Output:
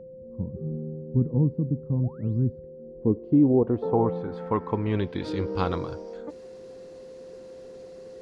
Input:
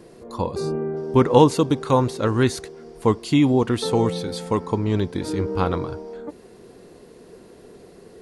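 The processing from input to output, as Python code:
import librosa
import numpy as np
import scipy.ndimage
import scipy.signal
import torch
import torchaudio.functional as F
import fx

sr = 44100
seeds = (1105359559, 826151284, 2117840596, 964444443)

y = fx.spec_paint(x, sr, seeds[0], shape='rise', start_s=2.03, length_s=0.37, low_hz=560.0, high_hz=6600.0, level_db=-20.0)
y = fx.filter_sweep_lowpass(y, sr, from_hz=180.0, to_hz=6400.0, start_s=2.6, end_s=5.81, q=1.6)
y = y + 10.0 ** (-37.0 / 20.0) * np.sin(2.0 * np.pi * 520.0 * np.arange(len(y)) / sr)
y = F.gain(torch.from_numpy(y), -4.5).numpy()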